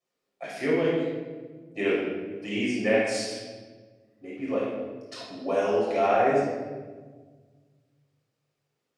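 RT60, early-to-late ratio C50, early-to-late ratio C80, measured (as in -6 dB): 1.4 s, -1.5 dB, 2.0 dB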